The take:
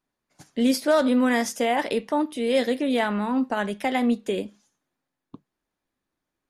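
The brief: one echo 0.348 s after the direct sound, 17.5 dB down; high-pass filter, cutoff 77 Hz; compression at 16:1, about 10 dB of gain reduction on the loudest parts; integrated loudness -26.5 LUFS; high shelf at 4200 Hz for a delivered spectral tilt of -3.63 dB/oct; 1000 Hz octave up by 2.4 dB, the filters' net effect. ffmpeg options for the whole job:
-af "highpass=77,equalizer=f=1k:t=o:g=3.5,highshelf=f=4.2k:g=-5.5,acompressor=threshold=-25dB:ratio=16,aecho=1:1:348:0.133,volume=4dB"

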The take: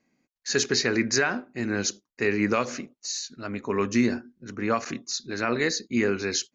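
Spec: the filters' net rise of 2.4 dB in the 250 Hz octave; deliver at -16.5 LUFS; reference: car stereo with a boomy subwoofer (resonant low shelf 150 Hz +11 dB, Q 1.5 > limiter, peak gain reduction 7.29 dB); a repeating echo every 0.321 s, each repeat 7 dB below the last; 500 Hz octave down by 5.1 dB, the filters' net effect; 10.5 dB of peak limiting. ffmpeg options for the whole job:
-af "equalizer=f=250:t=o:g=7.5,equalizer=f=500:t=o:g=-8.5,alimiter=limit=-18dB:level=0:latency=1,lowshelf=f=150:t=q:w=1.5:g=11,aecho=1:1:321|642|963|1284|1605:0.447|0.201|0.0905|0.0407|0.0183,volume=15dB,alimiter=limit=-7dB:level=0:latency=1"

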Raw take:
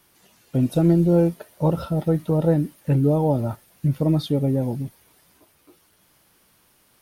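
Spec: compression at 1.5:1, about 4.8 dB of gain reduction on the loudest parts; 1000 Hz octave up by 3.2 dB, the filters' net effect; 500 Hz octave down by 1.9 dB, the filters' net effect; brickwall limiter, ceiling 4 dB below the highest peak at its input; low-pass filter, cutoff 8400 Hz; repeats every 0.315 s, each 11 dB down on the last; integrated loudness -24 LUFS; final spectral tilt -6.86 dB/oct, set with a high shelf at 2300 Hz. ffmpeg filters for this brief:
-af "lowpass=8.4k,equalizer=f=500:t=o:g=-3.5,equalizer=f=1k:t=o:g=6.5,highshelf=f=2.3k:g=-5.5,acompressor=threshold=-28dB:ratio=1.5,alimiter=limit=-18dB:level=0:latency=1,aecho=1:1:315|630|945:0.282|0.0789|0.0221,volume=3.5dB"

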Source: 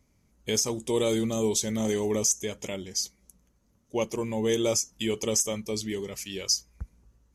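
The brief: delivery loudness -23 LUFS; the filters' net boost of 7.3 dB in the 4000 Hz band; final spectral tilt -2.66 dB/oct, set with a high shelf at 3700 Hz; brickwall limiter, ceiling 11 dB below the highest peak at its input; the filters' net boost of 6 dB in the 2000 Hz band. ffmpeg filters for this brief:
-af "equalizer=f=2k:t=o:g=4,highshelf=f=3.7k:g=3.5,equalizer=f=4k:t=o:g=6.5,volume=5dB,alimiter=limit=-11.5dB:level=0:latency=1"

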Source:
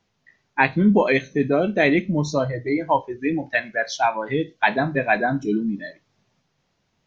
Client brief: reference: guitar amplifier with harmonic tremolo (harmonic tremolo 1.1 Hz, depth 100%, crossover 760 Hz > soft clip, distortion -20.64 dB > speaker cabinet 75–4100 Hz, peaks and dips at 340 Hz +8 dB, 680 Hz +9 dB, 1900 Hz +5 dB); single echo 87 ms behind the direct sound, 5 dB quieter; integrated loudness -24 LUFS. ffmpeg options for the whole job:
-filter_complex "[0:a]aecho=1:1:87:0.562,acrossover=split=760[a][b];[a]aeval=exprs='val(0)*(1-1/2+1/2*cos(2*PI*1.1*n/s))':c=same[c];[b]aeval=exprs='val(0)*(1-1/2-1/2*cos(2*PI*1.1*n/s))':c=same[d];[c][d]amix=inputs=2:normalize=0,asoftclip=threshold=-8.5dB,highpass=75,equalizer=f=340:t=q:w=4:g=8,equalizer=f=680:t=q:w=4:g=9,equalizer=f=1.9k:t=q:w=4:g=5,lowpass=f=4.1k:w=0.5412,lowpass=f=4.1k:w=1.3066,volume=-2.5dB"

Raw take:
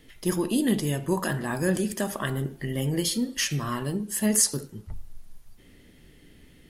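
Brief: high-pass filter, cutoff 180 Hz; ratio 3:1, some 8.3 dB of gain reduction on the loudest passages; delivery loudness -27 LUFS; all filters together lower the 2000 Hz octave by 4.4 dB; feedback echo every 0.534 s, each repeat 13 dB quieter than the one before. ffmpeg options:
-af "highpass=180,equalizer=f=2k:t=o:g=-5.5,acompressor=threshold=-29dB:ratio=3,aecho=1:1:534|1068|1602:0.224|0.0493|0.0108,volume=5.5dB"

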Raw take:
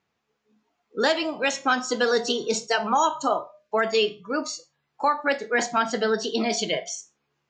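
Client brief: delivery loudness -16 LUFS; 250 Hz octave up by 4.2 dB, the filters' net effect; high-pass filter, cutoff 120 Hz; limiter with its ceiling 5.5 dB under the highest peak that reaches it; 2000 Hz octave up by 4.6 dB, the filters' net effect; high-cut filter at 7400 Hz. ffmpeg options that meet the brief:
-af "highpass=120,lowpass=7.4k,equalizer=f=250:t=o:g=5,equalizer=f=2k:t=o:g=6,volume=8dB,alimiter=limit=-3.5dB:level=0:latency=1"

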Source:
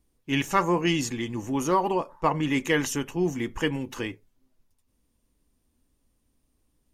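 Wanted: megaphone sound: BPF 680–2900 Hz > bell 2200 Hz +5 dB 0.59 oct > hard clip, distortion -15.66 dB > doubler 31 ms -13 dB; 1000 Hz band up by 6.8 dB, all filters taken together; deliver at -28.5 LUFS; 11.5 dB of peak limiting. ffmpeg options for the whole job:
-filter_complex "[0:a]equalizer=f=1k:t=o:g=8.5,alimiter=limit=-14.5dB:level=0:latency=1,highpass=680,lowpass=2.9k,equalizer=f=2.2k:t=o:w=0.59:g=5,asoftclip=type=hard:threshold=-20.5dB,asplit=2[a][b];[b]adelay=31,volume=-13dB[c];[a][c]amix=inputs=2:normalize=0,volume=1.5dB"

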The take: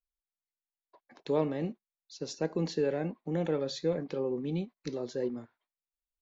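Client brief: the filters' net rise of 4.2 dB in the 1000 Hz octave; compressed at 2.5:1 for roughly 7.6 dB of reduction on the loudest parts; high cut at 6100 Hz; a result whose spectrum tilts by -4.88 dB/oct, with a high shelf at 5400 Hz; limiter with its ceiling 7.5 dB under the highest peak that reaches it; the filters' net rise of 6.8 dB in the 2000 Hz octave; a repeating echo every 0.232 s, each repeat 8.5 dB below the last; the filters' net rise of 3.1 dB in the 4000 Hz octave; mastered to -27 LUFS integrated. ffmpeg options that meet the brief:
-af "lowpass=6.1k,equalizer=f=1k:t=o:g=4,equalizer=f=2k:t=o:g=7,equalizer=f=4k:t=o:g=6,highshelf=f=5.4k:g=-7.5,acompressor=threshold=-35dB:ratio=2.5,alimiter=level_in=5dB:limit=-24dB:level=0:latency=1,volume=-5dB,aecho=1:1:232|464|696|928:0.376|0.143|0.0543|0.0206,volume=12.5dB"

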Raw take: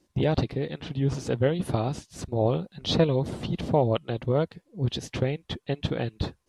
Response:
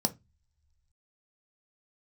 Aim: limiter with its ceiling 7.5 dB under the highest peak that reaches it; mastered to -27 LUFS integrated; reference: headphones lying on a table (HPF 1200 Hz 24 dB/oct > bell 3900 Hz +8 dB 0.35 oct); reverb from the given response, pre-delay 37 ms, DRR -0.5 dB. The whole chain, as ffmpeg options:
-filter_complex "[0:a]alimiter=limit=-17dB:level=0:latency=1,asplit=2[a][b];[1:a]atrim=start_sample=2205,adelay=37[c];[b][c]afir=irnorm=-1:irlink=0,volume=-5dB[d];[a][d]amix=inputs=2:normalize=0,highpass=f=1.2k:w=0.5412,highpass=f=1.2k:w=1.3066,equalizer=f=3.9k:t=o:w=0.35:g=8,volume=6.5dB"

